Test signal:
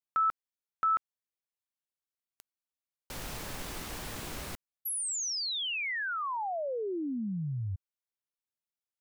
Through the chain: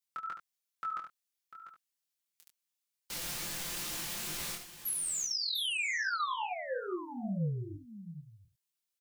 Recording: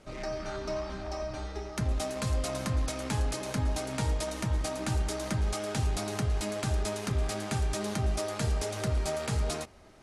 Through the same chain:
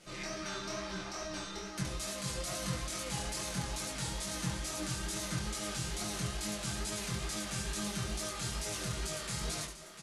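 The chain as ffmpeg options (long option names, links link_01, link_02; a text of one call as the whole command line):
ffmpeg -i in.wav -filter_complex "[0:a]tiltshelf=frequency=1400:gain=-9.5,asplit=2[link_01][link_02];[link_02]aecho=0:1:12|72:0.141|0.282[link_03];[link_01][link_03]amix=inputs=2:normalize=0,alimiter=level_in=4dB:limit=-24dB:level=0:latency=1:release=19,volume=-4dB,equalizer=frequency=190:width=0.38:gain=8,aecho=1:1:5.8:0.68,asplit=2[link_04][link_05];[link_05]aecho=0:1:696:0.251[link_06];[link_04][link_06]amix=inputs=2:normalize=0,flanger=delay=19:depth=5.8:speed=2.3" out.wav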